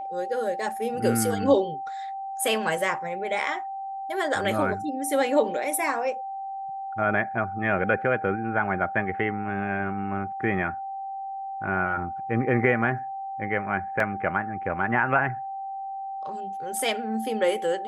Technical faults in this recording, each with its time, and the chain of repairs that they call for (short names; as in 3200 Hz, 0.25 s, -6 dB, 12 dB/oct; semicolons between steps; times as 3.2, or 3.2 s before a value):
tone 780 Hz -31 dBFS
14 gap 2.4 ms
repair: notch 780 Hz, Q 30; interpolate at 14, 2.4 ms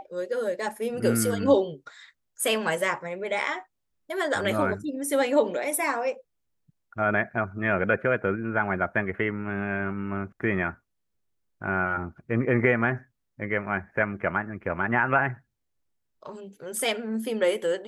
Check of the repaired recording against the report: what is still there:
none